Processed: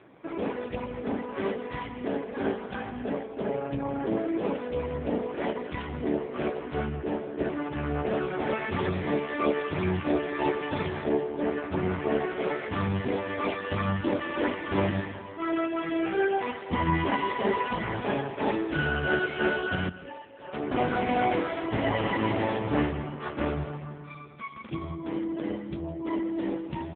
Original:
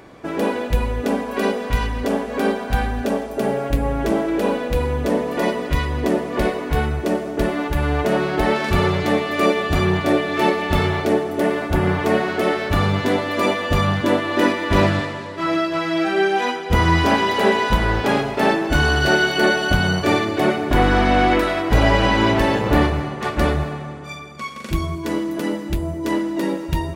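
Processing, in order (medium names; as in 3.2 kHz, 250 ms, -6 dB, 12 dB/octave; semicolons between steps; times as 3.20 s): 19.89–20.53 s: inharmonic resonator 130 Hz, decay 0.54 s, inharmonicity 0.008; delay 164 ms -17.5 dB; trim -7 dB; AMR-NB 5.15 kbps 8 kHz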